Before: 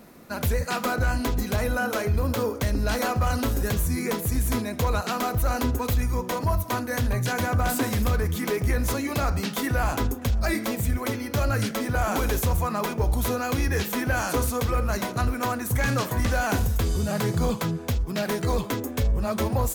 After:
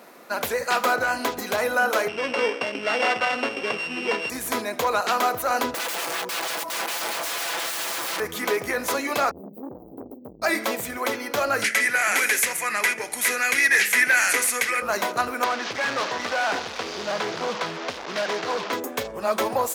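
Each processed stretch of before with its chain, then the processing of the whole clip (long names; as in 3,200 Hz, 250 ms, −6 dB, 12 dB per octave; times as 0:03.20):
0:02.08–0:04.30: samples sorted by size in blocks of 16 samples + band-pass filter 170–4,300 Hz
0:05.74–0:08.20: wrap-around overflow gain 28.5 dB + comb filter 6 ms, depth 53%
0:09.31–0:10.42: inverse Chebyshev band-stop filter 1,400–8,500 Hz, stop band 70 dB + tube saturation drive 27 dB, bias 0.35
0:11.64–0:14.82: drawn EQ curve 110 Hz 0 dB, 330 Hz −6 dB, 620 Hz −9 dB, 1,100 Hz −9 dB, 2,000 Hz +15 dB, 3,500 Hz 0 dB, 5,100 Hz +4 dB, 7,300 Hz +8 dB, 11,000 Hz +11 dB, 16,000 Hz −14 dB + hard clipping −16.5 dBFS + high-pass filter 200 Hz
0:15.44–0:18.73: linear delta modulator 32 kbit/s, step −29 dBFS + high-pass filter 95 Hz 6 dB per octave + gain into a clipping stage and back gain 26 dB
whole clip: high-pass filter 490 Hz 12 dB per octave; high-shelf EQ 4,700 Hz −6 dB; level +7 dB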